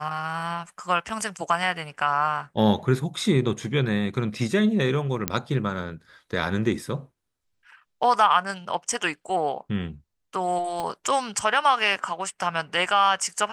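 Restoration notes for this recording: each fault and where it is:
5.28 s: pop -6 dBFS
10.80 s: pop -17 dBFS

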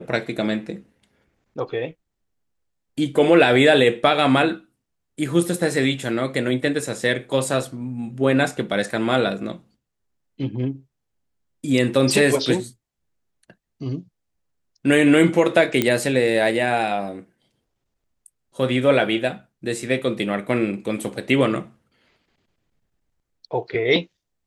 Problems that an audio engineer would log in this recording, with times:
15.82 s: pop -5 dBFS

